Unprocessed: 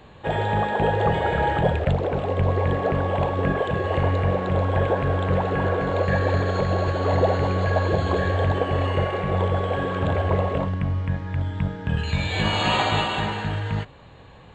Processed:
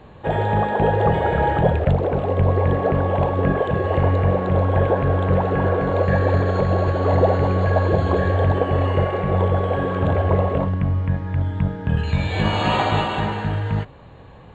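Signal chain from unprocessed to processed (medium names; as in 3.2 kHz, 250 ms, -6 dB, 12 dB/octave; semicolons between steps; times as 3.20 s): treble shelf 2.1 kHz -10 dB; trim +4 dB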